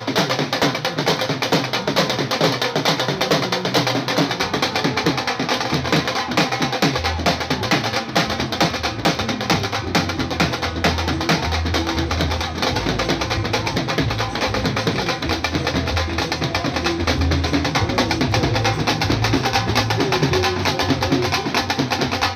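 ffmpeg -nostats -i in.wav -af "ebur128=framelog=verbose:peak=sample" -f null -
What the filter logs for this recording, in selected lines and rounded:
Integrated loudness:
  I:         -19.5 LUFS
  Threshold: -29.5 LUFS
Loudness range:
  LRA:         2.1 LU
  Threshold: -39.6 LUFS
  LRA low:   -20.6 LUFS
  LRA high:  -18.5 LUFS
Sample peak:
  Peak:       -4.8 dBFS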